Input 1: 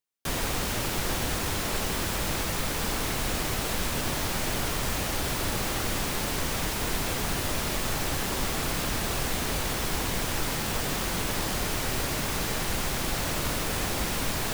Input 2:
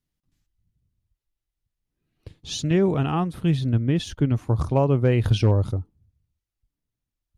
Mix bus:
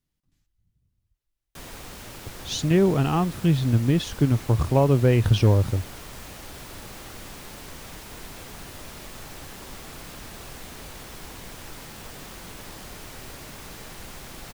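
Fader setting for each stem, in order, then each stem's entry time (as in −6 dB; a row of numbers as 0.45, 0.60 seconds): −11.5, +1.0 decibels; 1.30, 0.00 seconds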